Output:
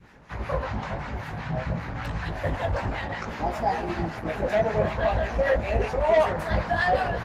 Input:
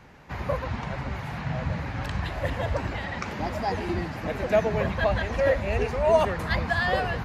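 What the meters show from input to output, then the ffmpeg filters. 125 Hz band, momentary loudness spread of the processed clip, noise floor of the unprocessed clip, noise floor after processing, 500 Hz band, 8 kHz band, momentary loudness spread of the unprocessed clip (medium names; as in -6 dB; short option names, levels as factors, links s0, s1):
-0.5 dB, 10 LU, -36 dBFS, -37 dBFS, +0.5 dB, no reading, 9 LU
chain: -filter_complex "[0:a]equalizer=f=1500:w=2.6:g=2.5,asplit=2[s0][s1];[s1]adelay=332,lowpass=f=3800:p=1,volume=0.1,asplit=2[s2][s3];[s3]adelay=332,lowpass=f=3800:p=1,volume=0.46,asplit=2[s4][s5];[s5]adelay=332,lowpass=f=3800:p=1,volume=0.46[s6];[s0][s2][s4][s6]amix=inputs=4:normalize=0,adynamicequalizer=threshold=0.0141:dfrequency=740:dqfactor=1.6:tfrequency=740:tqfactor=1.6:attack=5:release=100:ratio=0.375:range=3:mode=boostabove:tftype=bell,acrossover=split=920[s7][s8];[s7]aeval=exprs='val(0)*(1-0.7/2+0.7/2*cos(2*PI*5.2*n/s))':c=same[s9];[s8]aeval=exprs='val(0)*(1-0.7/2-0.7/2*cos(2*PI*5.2*n/s))':c=same[s10];[s9][s10]amix=inputs=2:normalize=0,bandreject=f=115.4:t=h:w=4,bandreject=f=230.8:t=h:w=4,bandreject=f=346.2:t=h:w=4,bandreject=f=461.6:t=h:w=4,bandreject=f=577:t=h:w=4,bandreject=f=692.4:t=h:w=4,bandreject=f=807.8:t=h:w=4,bandreject=f=923.2:t=h:w=4,bandreject=f=1038.6:t=h:w=4,bandreject=f=1154:t=h:w=4,bandreject=f=1269.4:t=h:w=4,bandreject=f=1384.8:t=h:w=4,bandreject=f=1500.2:t=h:w=4,bandreject=f=1615.6:t=h:w=4,bandreject=f=1731:t=h:w=4,bandreject=f=1846.4:t=h:w=4,bandreject=f=1961.8:t=h:w=4,asoftclip=type=tanh:threshold=0.141,flanger=delay=17:depth=2.4:speed=0.55,volume=2.11" -ar 48000 -c:a libopus -b:a 16k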